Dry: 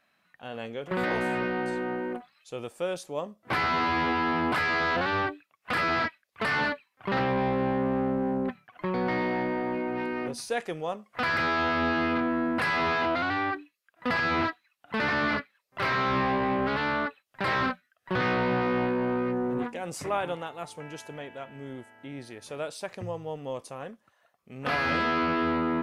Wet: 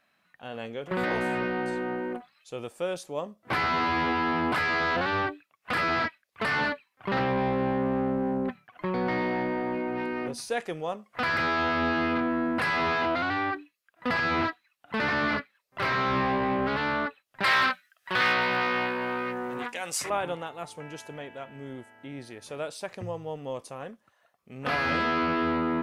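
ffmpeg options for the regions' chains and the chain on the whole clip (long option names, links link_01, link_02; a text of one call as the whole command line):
ffmpeg -i in.wav -filter_complex "[0:a]asettb=1/sr,asplit=3[link_01][link_02][link_03];[link_01]atrim=end=17.434[link_04];[link_02]atrim=start=17.43:end=20.1,asetpts=PTS-STARTPTS,afade=type=in:duration=0.004:curve=qsin,afade=type=out:start_time=2.666:duration=0.004:curve=qsin,tiltshelf=frequency=760:gain=-10,asoftclip=type=hard:threshold=-16.5dB[link_05];[link_03]atrim=start=20.096[link_06];[link_04][link_05]acrossfade=duration=0.004:curve1=hsin:curve2=qsin[link_07];[link_07][link_06]acrossfade=duration=0.004:curve1=qsin:curve2=hsin" out.wav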